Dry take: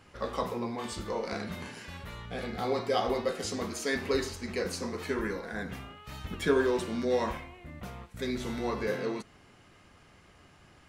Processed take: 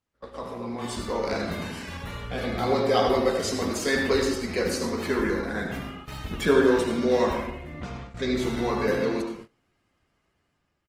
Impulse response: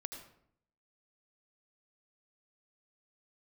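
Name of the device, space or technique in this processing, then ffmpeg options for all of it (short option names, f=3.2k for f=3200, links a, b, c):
speakerphone in a meeting room: -filter_complex "[0:a]asettb=1/sr,asplit=3[a][b][c];[a]atrim=end=7.734[d];[b]atrim=start=7.73:end=8.37,asetpts=PTS-STARTPTS,afade=t=in:d=0.004:c=qsin,afade=t=out:st=0.636:d=0.004:c=qsin,lowpass=f=7k:w=0.5412,lowpass=f=7k:w=1.3066[e];[c]atrim=start=8.366[f];[d][e]acrossfade=d=0.004:c1=hsin:c2=qsin[g];[g][f]acrossfade=d=0.004:c1=qsin:c2=hsin[h];[1:a]atrim=start_sample=2205[i];[h][i]afir=irnorm=-1:irlink=0,asplit=2[j][k];[k]adelay=80,highpass=300,lowpass=3.4k,asoftclip=type=hard:threshold=-26dB,volume=-24dB[l];[j][l]amix=inputs=2:normalize=0,dynaudnorm=f=320:g=5:m=12dB,agate=range=-21dB:threshold=-37dB:ratio=16:detection=peak,volume=-3dB" -ar 48000 -c:a libopus -b:a 20k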